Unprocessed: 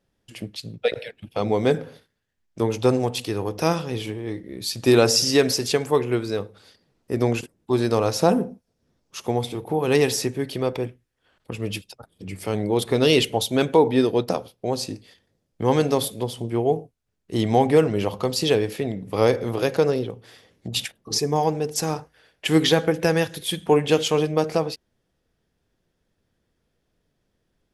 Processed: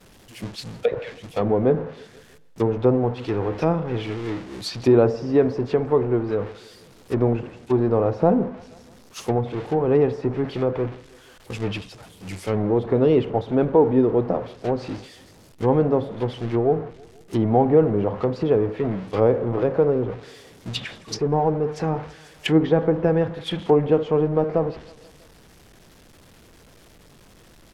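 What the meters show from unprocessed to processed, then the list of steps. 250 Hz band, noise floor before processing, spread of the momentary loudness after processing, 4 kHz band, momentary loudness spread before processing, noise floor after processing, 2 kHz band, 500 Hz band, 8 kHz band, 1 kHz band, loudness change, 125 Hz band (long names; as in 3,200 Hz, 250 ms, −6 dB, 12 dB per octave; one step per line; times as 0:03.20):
+1.5 dB, −74 dBFS, 14 LU, −10.0 dB, 14 LU, −51 dBFS, −6.5 dB, +1.5 dB, below −10 dB, −0.5 dB, +0.5 dB, +2.0 dB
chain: converter with a step at zero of −25.5 dBFS
downward expander −22 dBFS
on a send: repeating echo 161 ms, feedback 59%, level −24 dB
on the sum: treble cut that deepens with the level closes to 970 Hz, closed at −18 dBFS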